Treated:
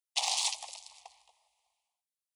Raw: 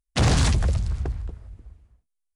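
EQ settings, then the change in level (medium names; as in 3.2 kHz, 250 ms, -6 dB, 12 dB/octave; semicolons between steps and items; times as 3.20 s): elliptic high-pass 820 Hz, stop band 60 dB; dynamic bell 1.4 kHz, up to +7 dB, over -52 dBFS, Q 6.1; Butterworth band-stop 1.5 kHz, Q 0.76; 0.0 dB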